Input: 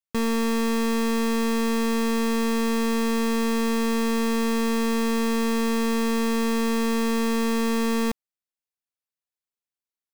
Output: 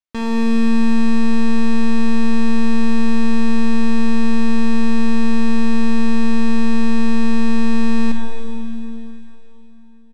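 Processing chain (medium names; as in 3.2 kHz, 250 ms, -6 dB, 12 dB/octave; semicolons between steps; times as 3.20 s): low-pass 5.6 kHz 12 dB/octave; comb 3.2 ms, depth 40%; flutter echo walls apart 11.4 m, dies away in 0.22 s; on a send at -2 dB: reverberation RT60 3.5 s, pre-delay 35 ms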